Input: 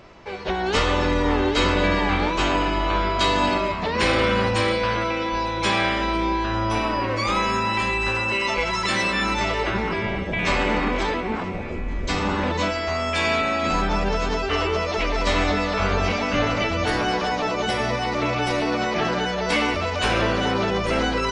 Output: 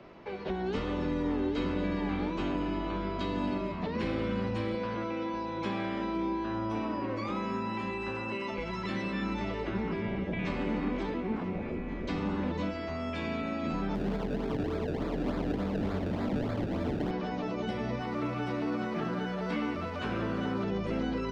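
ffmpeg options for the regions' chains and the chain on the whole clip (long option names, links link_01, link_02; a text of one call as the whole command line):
ffmpeg -i in.wav -filter_complex "[0:a]asettb=1/sr,asplit=3[link_01][link_02][link_03];[link_01]atrim=end=4.744[link_04];[link_02]atrim=start=4.74:end=8.51,asetpts=PTS-STARTPTS,afade=type=in:duration=0.004:curve=qsin,afade=type=out:start_time=3.766:duration=0.004:curve=qsin,highpass=frequency=140:poles=1,equalizer=frequency=940:width_type=o:width=1.8:gain=4[link_05];[link_03]atrim=start=8.506[link_06];[link_04][link_05]acrossfade=duration=0.004:curve1=hsin:curve2=qsin[link_07];[link_07][link_06]acrossfade=duration=0.004:curve1=qsin:curve2=hsin,asettb=1/sr,asplit=3[link_08][link_09][link_10];[link_08]atrim=end=13.954[link_11];[link_09]atrim=start=13.95:end=17.11,asetpts=PTS-STARTPTS,afade=type=in:duration=0.004:curve=qsin,afade=type=out:start_time=3.156:duration=0.004:curve=qsin,aecho=1:1:118:0.596,atrim=end_sample=139356,acrusher=samples=29:mix=1:aa=0.000001:lfo=1:lforange=29:lforate=3.4[link_12];[link_10]atrim=start=17.106[link_13];[link_11][link_12]acrossfade=duration=0.004:curve1=hsin:curve2=qsin[link_14];[link_14][link_13]acrossfade=duration=0.004:curve1=qsin:curve2=hsin,asettb=1/sr,asplit=3[link_15][link_16][link_17];[link_15]atrim=end=18.004[link_18];[link_16]atrim=start=18:end=20.64,asetpts=PTS-STARTPTS,afade=type=in:duration=0.004:curve=qsin,afade=type=out:start_time=2.636:duration=0.004:curve=qsin,highpass=69,equalizer=frequency=1300:width_type=o:width=0.84:gain=7,aeval=exprs='sgn(val(0))*max(abs(val(0))-0.0106,0)':channel_layout=same[link_19];[link_17]atrim=start=20.636[link_20];[link_18][link_19]acrossfade=duration=0.004:curve1=hsin:curve2=qsin[link_21];[link_21][link_20]acrossfade=duration=0.004:curve1=qsin:curve2=hsin,lowshelf=frequency=410:gain=11,acrossover=split=100|300|6100[link_22][link_23][link_24][link_25];[link_22]acompressor=threshold=-19dB:ratio=4[link_26];[link_23]acompressor=threshold=-21dB:ratio=4[link_27];[link_24]acompressor=threshold=-30dB:ratio=4[link_28];[link_25]acompressor=threshold=-49dB:ratio=4[link_29];[link_26][link_27][link_28][link_29]amix=inputs=4:normalize=0,acrossover=split=170 4800:gain=0.2 1 0.141[link_30][link_31][link_32];[link_30][link_31][link_32]amix=inputs=3:normalize=0,volume=-7.5dB" out.wav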